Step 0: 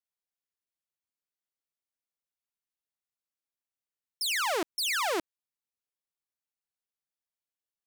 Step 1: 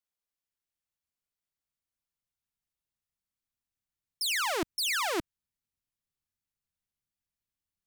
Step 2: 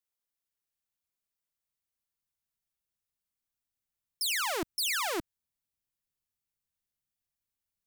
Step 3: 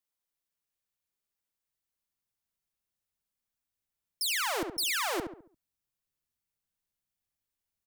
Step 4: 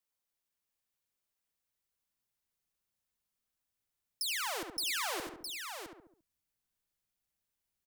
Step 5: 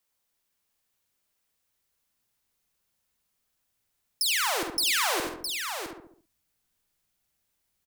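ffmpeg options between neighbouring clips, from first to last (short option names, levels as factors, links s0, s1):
-af "asubboost=boost=6.5:cutoff=190"
-af "asoftclip=type=hard:threshold=0.0794,crystalizer=i=0.5:c=0,volume=0.794"
-filter_complex "[0:a]asplit=2[s0][s1];[s1]adelay=69,lowpass=f=1500:p=1,volume=0.562,asplit=2[s2][s3];[s3]adelay=69,lowpass=f=1500:p=1,volume=0.42,asplit=2[s4][s5];[s5]adelay=69,lowpass=f=1500:p=1,volume=0.42,asplit=2[s6][s7];[s7]adelay=69,lowpass=f=1500:p=1,volume=0.42,asplit=2[s8][s9];[s9]adelay=69,lowpass=f=1500:p=1,volume=0.42[s10];[s0][s2][s4][s6][s8][s10]amix=inputs=6:normalize=0"
-filter_complex "[0:a]acrossover=split=880|2600[s0][s1][s2];[s0]acompressor=threshold=0.00708:ratio=4[s3];[s1]acompressor=threshold=0.00794:ratio=4[s4];[s2]acompressor=threshold=0.0178:ratio=4[s5];[s3][s4][s5]amix=inputs=3:normalize=0,aecho=1:1:73|662:0.133|0.473"
-filter_complex "[0:a]asplit=2[s0][s1];[s1]adelay=48,volume=0.335[s2];[s0][s2]amix=inputs=2:normalize=0,volume=2.82"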